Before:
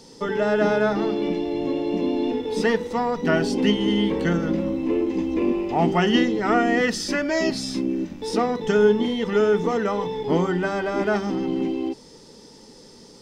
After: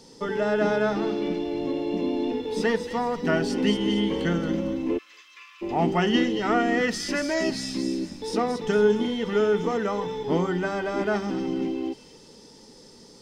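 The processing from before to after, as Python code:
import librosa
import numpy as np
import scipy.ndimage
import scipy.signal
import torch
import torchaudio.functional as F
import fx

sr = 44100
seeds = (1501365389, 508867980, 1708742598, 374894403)

p1 = fx.cheby_ripple_highpass(x, sr, hz=1100.0, ripple_db=3, at=(4.97, 5.61), fade=0.02)
p2 = p1 + fx.echo_wet_highpass(p1, sr, ms=228, feedback_pct=42, hz=2900.0, wet_db=-6, dry=0)
y = p2 * 10.0 ** (-3.0 / 20.0)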